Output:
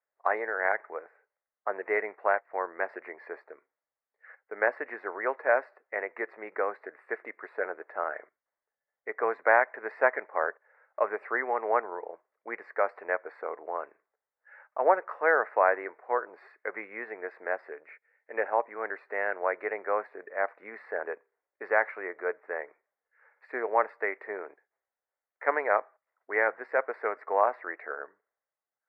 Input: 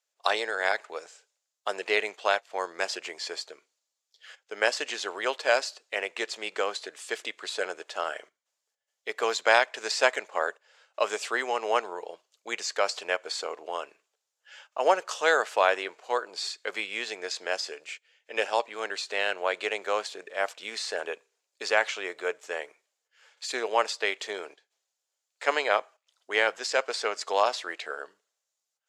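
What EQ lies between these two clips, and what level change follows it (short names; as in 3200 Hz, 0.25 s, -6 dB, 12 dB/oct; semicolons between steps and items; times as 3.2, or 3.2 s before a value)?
elliptic low-pass 2000 Hz, stop band 40 dB; bell 170 Hz -5.5 dB 0.46 oct; 0.0 dB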